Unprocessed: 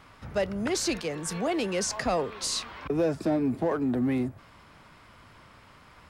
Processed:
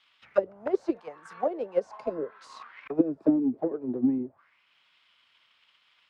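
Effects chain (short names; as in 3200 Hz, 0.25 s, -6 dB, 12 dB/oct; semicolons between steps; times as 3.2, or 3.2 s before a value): low shelf 260 Hz +3 dB; auto-wah 290–3500 Hz, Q 3.3, down, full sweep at -21 dBFS; transient shaper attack +10 dB, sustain -3 dB; spectral repair 1.97–2.37, 670–2100 Hz both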